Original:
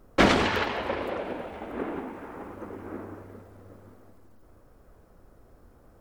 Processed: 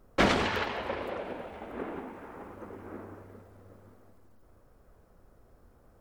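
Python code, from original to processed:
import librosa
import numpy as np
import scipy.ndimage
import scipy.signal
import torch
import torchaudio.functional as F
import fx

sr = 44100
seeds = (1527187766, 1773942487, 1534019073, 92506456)

y = fx.peak_eq(x, sr, hz=300.0, db=-3.0, octaves=0.43)
y = y * 10.0 ** (-4.0 / 20.0)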